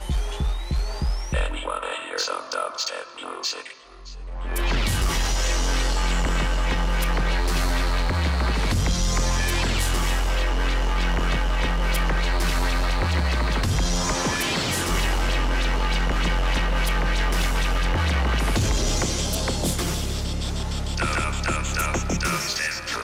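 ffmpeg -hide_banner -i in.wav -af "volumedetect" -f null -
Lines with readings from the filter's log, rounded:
mean_volume: -22.5 dB
max_volume: -14.9 dB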